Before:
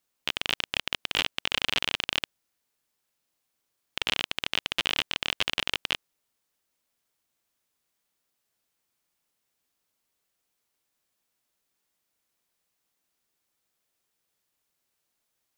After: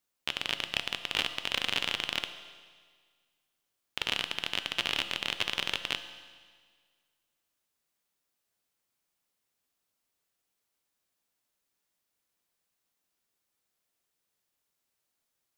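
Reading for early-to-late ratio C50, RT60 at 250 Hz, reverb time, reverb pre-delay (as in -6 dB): 10.5 dB, 1.7 s, 1.7 s, 6 ms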